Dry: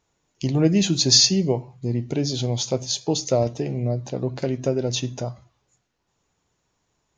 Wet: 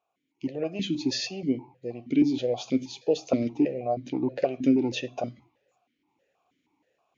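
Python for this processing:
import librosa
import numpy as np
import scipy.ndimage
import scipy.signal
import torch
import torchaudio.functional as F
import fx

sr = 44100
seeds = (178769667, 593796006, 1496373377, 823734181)

y = fx.rider(x, sr, range_db=10, speed_s=2.0)
y = fx.vowel_held(y, sr, hz=6.3)
y = y * 10.0 ** (7.5 / 20.0)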